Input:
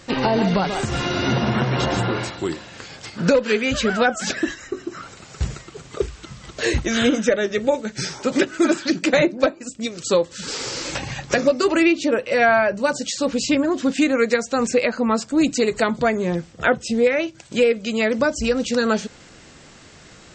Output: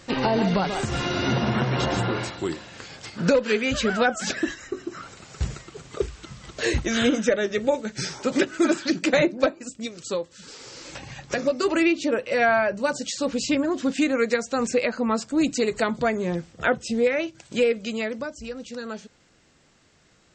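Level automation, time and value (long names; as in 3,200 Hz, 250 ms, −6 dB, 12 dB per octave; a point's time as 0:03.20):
0:09.63 −3 dB
0:10.57 −15 dB
0:11.69 −4 dB
0:17.85 −4 dB
0:18.33 −14.5 dB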